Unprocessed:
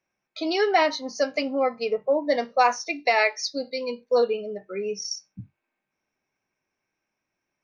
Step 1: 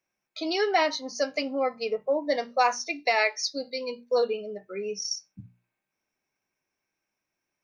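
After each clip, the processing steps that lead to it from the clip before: high shelf 4700 Hz +6.5 dB; notches 60/120/180/240 Hz; gain -3.5 dB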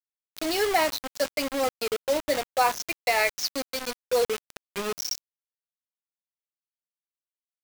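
bit-crush 5-bit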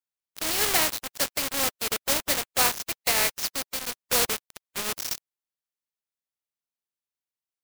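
spectral contrast lowered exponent 0.41

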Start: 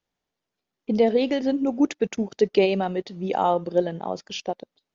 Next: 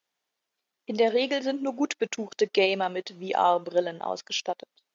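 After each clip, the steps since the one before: HPF 970 Hz 6 dB/oct; gain +4 dB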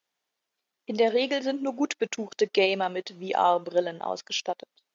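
nothing audible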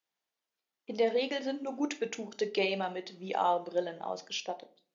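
shoebox room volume 310 m³, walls furnished, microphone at 0.65 m; gain -7 dB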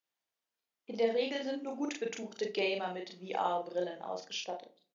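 doubler 39 ms -3 dB; gain -4 dB

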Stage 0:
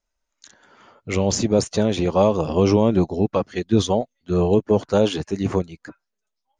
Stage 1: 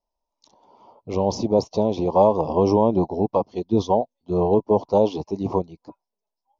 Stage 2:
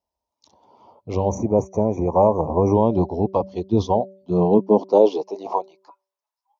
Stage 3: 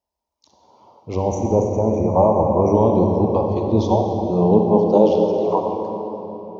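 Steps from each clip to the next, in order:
EQ curve 120 Hz 0 dB, 550 Hz +6 dB, 980 Hz +12 dB, 1600 Hz -29 dB, 2300 Hz -10 dB, 5600 Hz 0 dB, 8200 Hz -27 dB; gain -5.5 dB
high-pass sweep 73 Hz -> 1100 Hz, 3.91–5.84; de-hum 192.3 Hz, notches 3; spectral gain 1.29–2.75, 2500–5700 Hz -30 dB
reverb RT60 3.8 s, pre-delay 34 ms, DRR 1.5 dB

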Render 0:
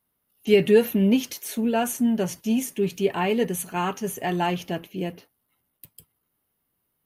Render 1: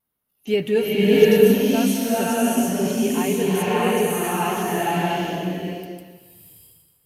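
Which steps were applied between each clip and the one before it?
vibrato 2 Hz 37 cents; bloom reverb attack 0.68 s, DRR -8 dB; gain -3.5 dB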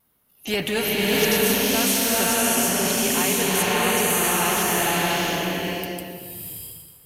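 spectral compressor 2:1; gain -5.5 dB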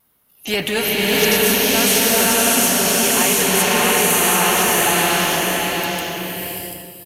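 low shelf 470 Hz -3.5 dB; on a send: echo 0.739 s -5.5 dB; on the sum: gain +5 dB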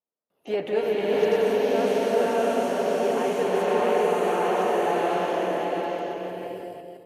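reverse delay 0.166 s, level -6 dB; gate with hold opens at -45 dBFS; band-pass 510 Hz, Q 1.8

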